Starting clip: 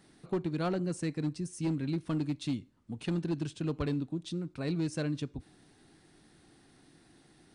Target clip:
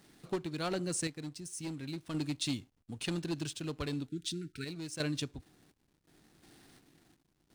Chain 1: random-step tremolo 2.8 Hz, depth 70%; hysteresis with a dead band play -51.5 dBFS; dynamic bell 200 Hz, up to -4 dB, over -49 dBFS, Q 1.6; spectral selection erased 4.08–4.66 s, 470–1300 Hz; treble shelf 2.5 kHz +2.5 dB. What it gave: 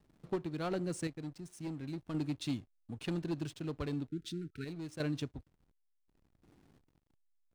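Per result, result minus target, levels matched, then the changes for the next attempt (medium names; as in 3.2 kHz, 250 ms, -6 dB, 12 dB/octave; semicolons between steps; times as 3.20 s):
4 kHz band -6.5 dB; hysteresis with a dead band: distortion +8 dB
change: treble shelf 2.5 kHz +13.5 dB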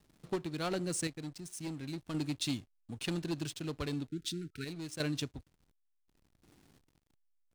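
hysteresis with a dead band: distortion +8 dB
change: hysteresis with a dead band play -61 dBFS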